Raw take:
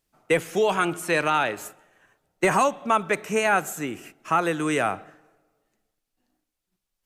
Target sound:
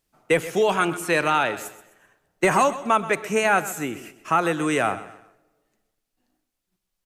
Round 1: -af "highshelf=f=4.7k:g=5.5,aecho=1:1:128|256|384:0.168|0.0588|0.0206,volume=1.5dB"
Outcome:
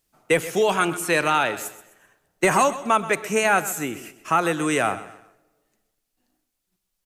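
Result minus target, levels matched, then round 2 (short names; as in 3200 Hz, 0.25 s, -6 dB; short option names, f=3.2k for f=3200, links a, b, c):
8000 Hz band +3.5 dB
-af "aecho=1:1:128|256|384:0.168|0.0588|0.0206,volume=1.5dB"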